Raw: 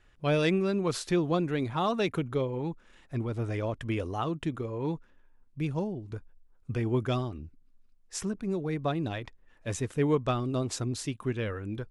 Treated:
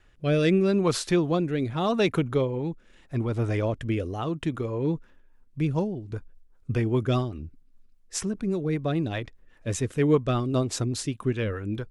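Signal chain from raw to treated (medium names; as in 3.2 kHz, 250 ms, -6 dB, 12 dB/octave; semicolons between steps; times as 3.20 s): rotary cabinet horn 0.8 Hz, later 5 Hz, at 4.54 s; trim +6 dB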